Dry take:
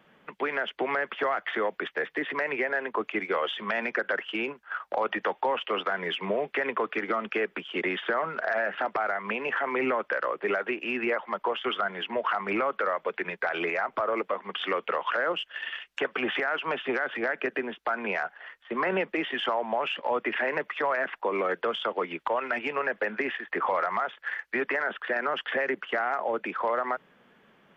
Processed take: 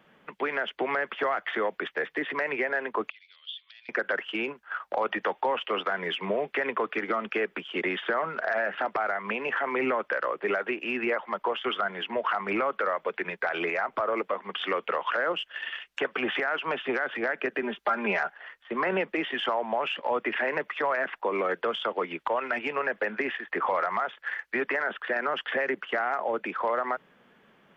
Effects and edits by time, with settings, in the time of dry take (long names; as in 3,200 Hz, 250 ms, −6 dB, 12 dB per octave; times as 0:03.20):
0:03.10–0:03.89: flat-topped band-pass 4,000 Hz, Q 2.9
0:17.62–0:18.30: comb filter 5 ms, depth 97%